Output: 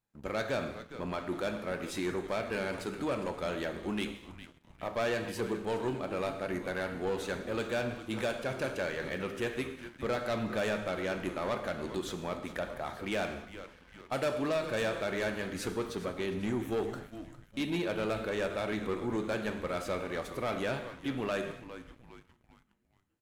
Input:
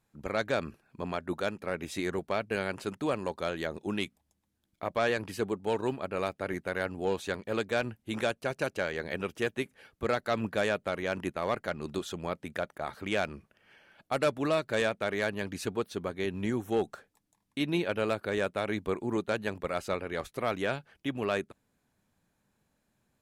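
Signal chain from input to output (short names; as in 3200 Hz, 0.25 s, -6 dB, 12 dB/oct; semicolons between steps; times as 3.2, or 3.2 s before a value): frequency-shifting echo 0.407 s, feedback 51%, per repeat -120 Hz, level -16 dB; non-linear reverb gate 0.29 s falling, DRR 7 dB; sample leveller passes 2; gain -8.5 dB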